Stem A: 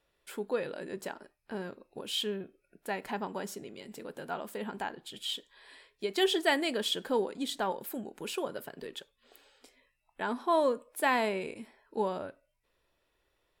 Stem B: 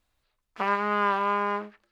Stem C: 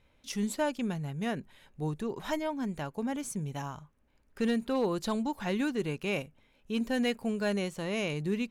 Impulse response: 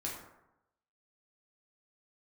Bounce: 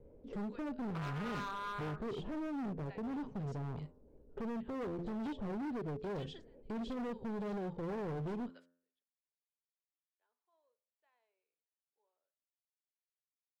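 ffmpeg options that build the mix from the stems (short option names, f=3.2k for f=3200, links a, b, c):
-filter_complex "[0:a]highpass=f=410:w=0.5412,highpass=f=410:w=1.3066,volume=-13.5dB[a];[1:a]lowpass=f=1.4k:t=q:w=3.9,adelay=350,volume=-19.5dB[b];[2:a]acontrast=59,lowpass=f=450:t=q:w=4.1,volume=0.5dB,asplit=2[c][d];[d]apad=whole_len=599771[e];[a][e]sidechaingate=range=-38dB:threshold=-46dB:ratio=16:detection=peak[f];[f][c]amix=inputs=2:normalize=0,acrossover=split=240|1000[g][h][i];[g]acompressor=threshold=-30dB:ratio=4[j];[h]acompressor=threshold=-38dB:ratio=4[k];[i]acompressor=threshold=-49dB:ratio=4[l];[j][k][l]amix=inputs=3:normalize=0,alimiter=level_in=1.5dB:limit=-24dB:level=0:latency=1:release=351,volume=-1.5dB,volume=0dB[m];[b][m]amix=inputs=2:normalize=0,lowpass=f=6.3k:w=0.5412,lowpass=f=6.3k:w=1.3066,bandreject=f=86.53:t=h:w=4,bandreject=f=173.06:t=h:w=4,bandreject=f=259.59:t=h:w=4,bandreject=f=346.12:t=h:w=4,bandreject=f=432.65:t=h:w=4,bandreject=f=519.18:t=h:w=4,bandreject=f=605.71:t=h:w=4,bandreject=f=692.24:t=h:w=4,bandreject=f=778.77:t=h:w=4,bandreject=f=865.3:t=h:w=4,bandreject=f=951.83:t=h:w=4,bandreject=f=1.03836k:t=h:w=4,bandreject=f=1.12489k:t=h:w=4,bandreject=f=1.21142k:t=h:w=4,bandreject=f=1.29795k:t=h:w=4,bandreject=f=1.38448k:t=h:w=4,bandreject=f=1.47101k:t=h:w=4,bandreject=f=1.55754k:t=h:w=4,bandreject=f=1.64407k:t=h:w=4,bandreject=f=1.7306k:t=h:w=4,bandreject=f=1.81713k:t=h:w=4,asoftclip=type=hard:threshold=-37.5dB"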